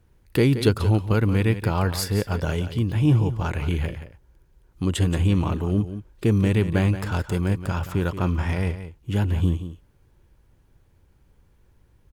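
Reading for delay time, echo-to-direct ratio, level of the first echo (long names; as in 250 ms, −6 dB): 176 ms, −11.5 dB, −11.5 dB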